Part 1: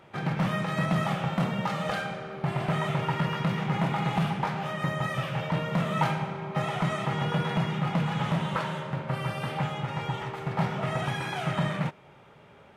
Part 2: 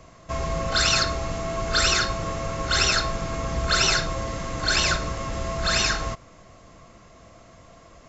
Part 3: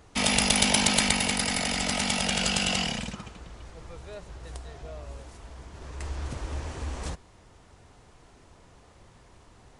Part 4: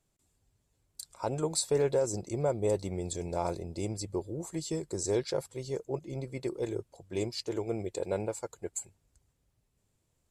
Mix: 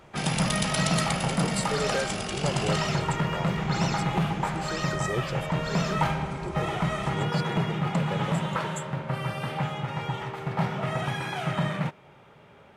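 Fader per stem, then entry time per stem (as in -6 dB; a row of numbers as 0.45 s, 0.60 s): +0.5 dB, -15.5 dB, -8.0 dB, -3.5 dB; 0.00 s, 0.00 s, 0.00 s, 0.00 s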